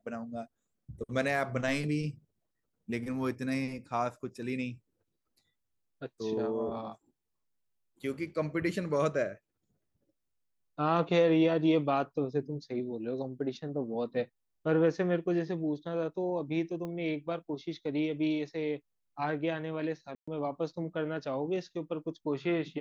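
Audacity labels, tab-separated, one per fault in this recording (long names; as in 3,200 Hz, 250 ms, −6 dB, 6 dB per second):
16.850000	16.850000	click −27 dBFS
20.150000	20.270000	drop-out 125 ms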